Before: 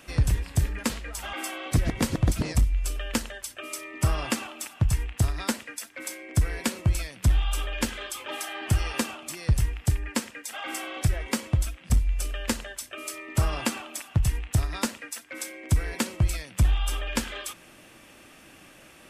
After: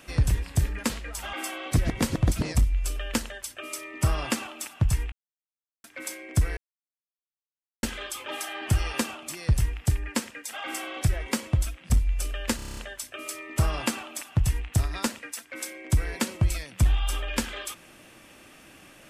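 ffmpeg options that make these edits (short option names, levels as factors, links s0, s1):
-filter_complex "[0:a]asplit=12[s0][s1][s2][s3][s4][s5][s6][s7][s8][s9][s10][s11];[s0]atrim=end=5.12,asetpts=PTS-STARTPTS,afade=t=out:st=5.116:d=0.004:c=hsin[s12];[s1]atrim=start=5.12:end=5.84,asetpts=PTS-STARTPTS,volume=0[s13];[s2]atrim=start=5.84:end=6.57,asetpts=PTS-STARTPTS,afade=t=in:d=0.004:c=hsin,afade=t=out:st=0.726:d=0.004:c=hsin[s14];[s3]atrim=start=6.57:end=7.83,asetpts=PTS-STARTPTS,volume=0[s15];[s4]atrim=start=7.83:end=12.592,asetpts=PTS-STARTPTS,afade=t=in:d=0.004:c=hsin[s16];[s5]atrim=start=12.558:end=12.592[s17];[s6]atrim=start=12.558:end=12.592[s18];[s7]atrim=start=12.558:end=12.592[s19];[s8]atrim=start=12.558:end=12.592[s20];[s9]atrim=start=12.558:end=12.592[s21];[s10]atrim=start=12.558:end=12.592[s22];[s11]atrim=start=12.558[s23];[s12][s13][s14][s15][s16]concat=n=5:v=0:a=1[s24];[s24][s17]acrossfade=d=0.004:c1=hsin:c2=hsin[s25];[s25][s18]acrossfade=d=0.004:c1=hsin:c2=hsin[s26];[s26][s19]acrossfade=d=0.004:c1=hsin:c2=hsin[s27];[s27][s20]acrossfade=d=0.004:c1=hsin:c2=hsin[s28];[s28][s21]acrossfade=d=0.004:c1=hsin:c2=hsin[s29];[s29][s22]acrossfade=d=0.004:c1=hsin:c2=hsin[s30];[s30][s23]acrossfade=d=0.004:c1=hsin:c2=hsin"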